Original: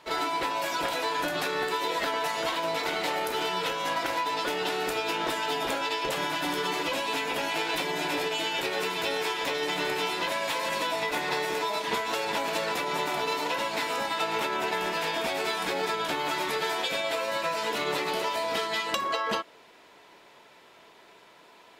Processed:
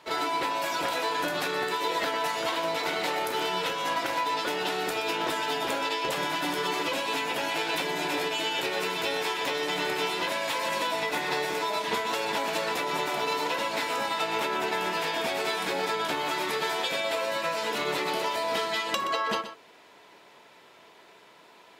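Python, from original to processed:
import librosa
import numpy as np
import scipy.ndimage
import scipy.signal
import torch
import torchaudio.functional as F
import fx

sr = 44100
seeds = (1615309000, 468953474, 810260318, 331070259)

p1 = scipy.signal.sosfilt(scipy.signal.butter(2, 71.0, 'highpass', fs=sr, output='sos'), x)
y = p1 + fx.echo_single(p1, sr, ms=124, db=-12.0, dry=0)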